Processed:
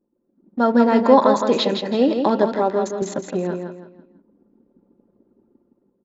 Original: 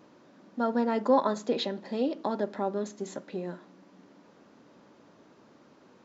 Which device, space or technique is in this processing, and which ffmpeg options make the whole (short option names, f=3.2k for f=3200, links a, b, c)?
voice memo with heavy noise removal: -filter_complex "[0:a]asettb=1/sr,asplit=3[a][b][c];[a]atrim=end=2.554[d];[b]atrim=start=2.55:end=3.02,asetpts=PTS-STARTPTS,afade=t=in:d=0.004:c=qsin,afade=t=out:st=0.466:d=0.004:c=qsin,highpass=f=330:p=1[e];[c]atrim=start=3.016[f];[d][e]acrossfade=d=0.004:c1=hsin:c2=qsin[g];[g][f]acrossfade=d=0.004:c1=qsin:c2=hsin,anlmdn=0.0398,dynaudnorm=f=180:g=5:m=12dB,aecho=1:1:165|330|495|660:0.501|0.165|0.0546|0.018"